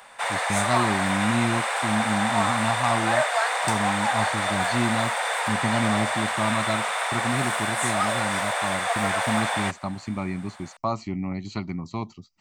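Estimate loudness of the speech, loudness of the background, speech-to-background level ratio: −29.0 LKFS, −24.5 LKFS, −4.5 dB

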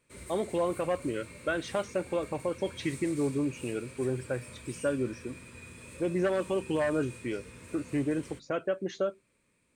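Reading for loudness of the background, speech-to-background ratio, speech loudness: −47.0 LKFS, 14.5 dB, −32.5 LKFS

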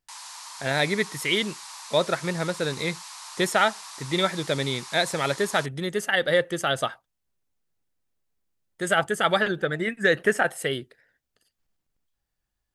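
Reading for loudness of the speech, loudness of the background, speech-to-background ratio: −25.5 LKFS, −39.0 LKFS, 13.5 dB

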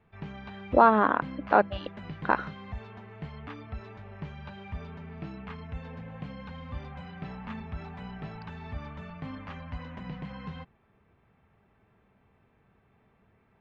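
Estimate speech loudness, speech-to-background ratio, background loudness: −24.5 LKFS, 17.0 dB, −41.5 LKFS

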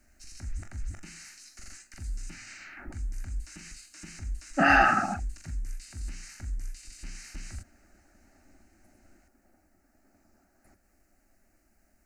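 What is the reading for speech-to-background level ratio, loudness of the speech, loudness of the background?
18.5 dB, −23.5 LKFS, −42.0 LKFS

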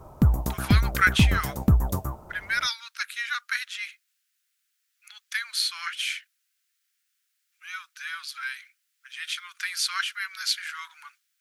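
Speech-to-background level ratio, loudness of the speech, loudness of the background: −4.5 dB, −29.0 LKFS, −24.5 LKFS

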